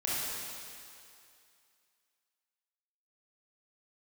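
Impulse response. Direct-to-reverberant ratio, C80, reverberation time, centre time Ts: -8.0 dB, -1.5 dB, 2.4 s, 0.171 s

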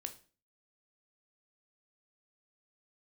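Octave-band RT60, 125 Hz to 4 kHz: 0.45, 0.45, 0.40, 0.35, 0.35, 0.35 s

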